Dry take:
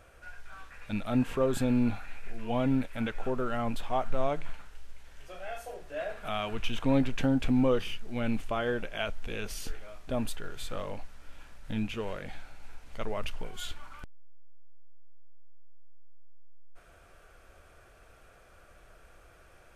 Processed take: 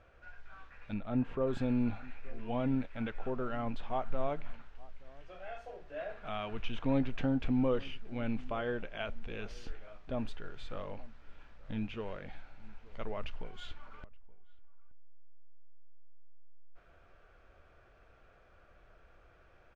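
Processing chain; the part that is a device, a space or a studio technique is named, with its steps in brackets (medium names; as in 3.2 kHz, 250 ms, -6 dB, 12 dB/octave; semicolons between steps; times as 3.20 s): 0.94–1.47 s: treble shelf 2 kHz -8.5 dB; shout across a valley (distance through air 180 m; echo from a far wall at 150 m, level -22 dB); trim -4.5 dB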